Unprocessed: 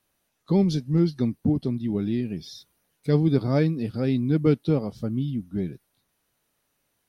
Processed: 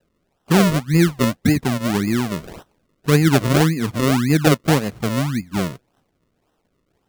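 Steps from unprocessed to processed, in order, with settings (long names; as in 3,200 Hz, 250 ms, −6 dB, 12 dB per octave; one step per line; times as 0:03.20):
sample-and-hold swept by an LFO 38×, swing 100% 1.8 Hz
level +6 dB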